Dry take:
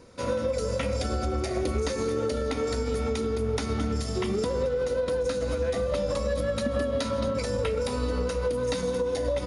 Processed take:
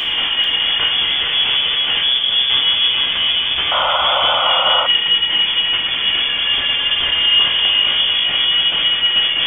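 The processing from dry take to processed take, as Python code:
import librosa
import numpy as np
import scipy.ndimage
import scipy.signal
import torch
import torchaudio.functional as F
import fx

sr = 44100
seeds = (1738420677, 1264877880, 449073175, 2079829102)

p1 = fx.cheby2_bandstop(x, sr, low_hz=380.0, high_hz=1700.0, order=4, stop_db=80, at=(2.02, 2.5))
p2 = fx.over_compress(p1, sr, threshold_db=-35.0, ratio=-0.5)
p3 = fx.fuzz(p2, sr, gain_db=50.0, gate_db=-55.0)
p4 = fx.comb_fb(p3, sr, f0_hz=68.0, decay_s=1.9, harmonics='all', damping=0.0, mix_pct=70)
p5 = fx.vibrato(p4, sr, rate_hz=2.1, depth_cents=9.4)
p6 = fx.freq_invert(p5, sr, carrier_hz=3400)
p7 = p6 + fx.echo_feedback(p6, sr, ms=440, feedback_pct=31, wet_db=-5.0, dry=0)
p8 = fx.rev_gated(p7, sr, seeds[0], gate_ms=260, shape='falling', drr_db=2.5)
p9 = fx.spec_paint(p8, sr, seeds[1], shape='noise', start_s=3.71, length_s=1.16, low_hz=500.0, high_hz=1500.0, level_db=-22.0)
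y = p9 * librosa.db_to_amplitude(3.5)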